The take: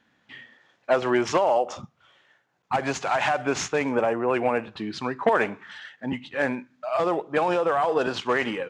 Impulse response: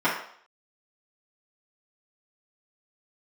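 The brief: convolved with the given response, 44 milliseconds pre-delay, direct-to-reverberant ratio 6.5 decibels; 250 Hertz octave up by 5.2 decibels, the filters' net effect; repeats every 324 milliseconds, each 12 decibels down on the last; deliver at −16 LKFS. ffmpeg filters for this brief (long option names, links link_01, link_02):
-filter_complex "[0:a]equalizer=frequency=250:width_type=o:gain=6.5,aecho=1:1:324|648|972:0.251|0.0628|0.0157,asplit=2[link_01][link_02];[1:a]atrim=start_sample=2205,adelay=44[link_03];[link_02][link_03]afir=irnorm=-1:irlink=0,volume=-23dB[link_04];[link_01][link_04]amix=inputs=2:normalize=0,volume=6.5dB"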